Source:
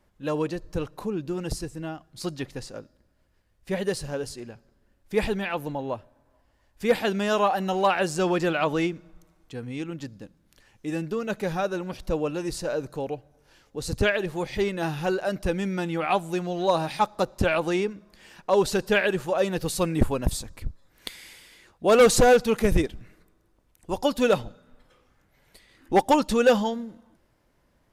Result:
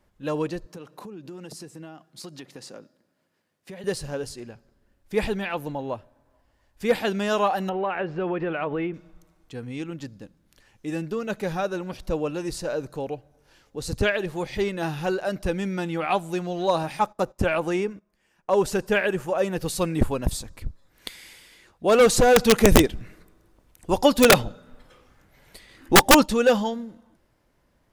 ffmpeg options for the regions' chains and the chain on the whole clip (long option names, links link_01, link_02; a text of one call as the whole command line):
ffmpeg -i in.wav -filter_complex "[0:a]asettb=1/sr,asplit=3[link_01][link_02][link_03];[link_01]atrim=end=0.664[link_04];[link_02]atrim=start=0.66:end=3.84,asetpts=PTS-STARTPTS,afade=type=in:duration=0.004:curve=qsin,afade=type=out:start_time=3.176:duration=0.004:curve=qsin,highpass=frequency=150:width=0.5412,highpass=frequency=150:width=1.3066,acompressor=threshold=-36dB:ratio=8:attack=3.2:release=140:knee=1:detection=peak[link_05];[link_03]atrim=start=3.836[link_06];[link_04][link_05]acrossfade=duration=0.004:curve1=hsin:curve2=qsin[link_07];[link_07][link_06]acrossfade=duration=0.004:curve1=qsin:curve2=hsin,asettb=1/sr,asplit=3[link_08][link_09][link_10];[link_08]atrim=end=7.694[link_11];[link_09]atrim=start=7.69:end=8.94,asetpts=PTS-STARTPTS,afade=type=in:duration=0.004:curve=qsin,afade=type=out:start_time=1.246:duration=0.004:curve=qsin,lowpass=frequency=2600:width=0.5412,lowpass=frequency=2600:width=1.3066,equalizer=frequency=430:width_type=o:width=0.33:gain=5.5,acompressor=threshold=-25dB:ratio=2.5:attack=3.2:release=140:knee=1:detection=peak[link_12];[link_10]atrim=start=8.936[link_13];[link_11][link_12]acrossfade=duration=0.004:curve1=hsin:curve2=qsin[link_14];[link_14][link_13]acrossfade=duration=0.004:curve1=qsin:curve2=hsin,asettb=1/sr,asplit=3[link_15][link_16][link_17];[link_15]atrim=end=16.834[link_18];[link_16]atrim=start=16.83:end=19.62,asetpts=PTS-STARTPTS,afade=type=in:duration=0.004:curve=qsin,afade=type=out:start_time=2.786:duration=0.004:curve=qsin,agate=range=-16dB:threshold=-44dB:ratio=16:release=100:detection=peak,equalizer=frequency=4000:width=2.3:gain=-8[link_19];[link_17]atrim=start=19.616[link_20];[link_18][link_19]acrossfade=duration=0.004:curve1=hsin:curve2=qsin[link_21];[link_21][link_20]acrossfade=duration=0.004:curve1=qsin:curve2=hsin,asettb=1/sr,asplit=3[link_22][link_23][link_24];[link_22]atrim=end=22.364[link_25];[link_23]atrim=start=22.36:end=26.26,asetpts=PTS-STARTPTS,afade=type=in:duration=0.004:curve=qsin,afade=type=out:start_time=3.896:duration=0.004:curve=qsin,acontrast=70,aeval=exprs='(mod(2.11*val(0)+1,2)-1)/2.11':channel_layout=same[link_26];[link_24]atrim=start=26.256[link_27];[link_25][link_26]acrossfade=duration=0.004:curve1=hsin:curve2=qsin[link_28];[link_28][link_27]acrossfade=duration=0.004:curve1=qsin:curve2=hsin" out.wav